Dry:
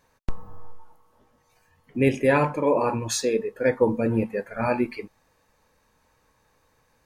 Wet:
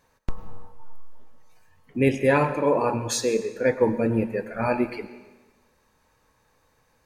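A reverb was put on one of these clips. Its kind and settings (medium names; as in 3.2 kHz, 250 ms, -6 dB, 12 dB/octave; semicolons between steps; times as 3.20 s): algorithmic reverb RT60 1.2 s, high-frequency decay 0.95×, pre-delay 65 ms, DRR 12.5 dB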